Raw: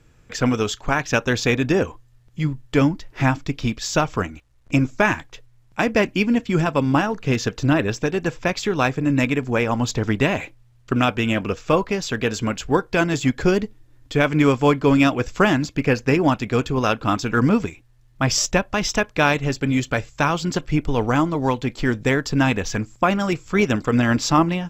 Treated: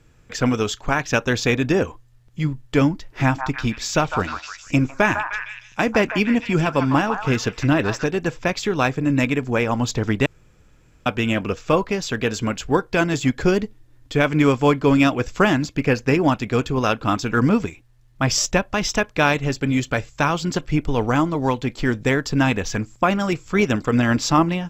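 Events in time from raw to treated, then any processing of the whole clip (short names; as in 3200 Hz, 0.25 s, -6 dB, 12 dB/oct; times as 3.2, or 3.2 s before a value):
3.23–8.04 delay with a stepping band-pass 0.153 s, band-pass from 1100 Hz, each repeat 0.7 oct, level -3 dB
10.26–11.06 room tone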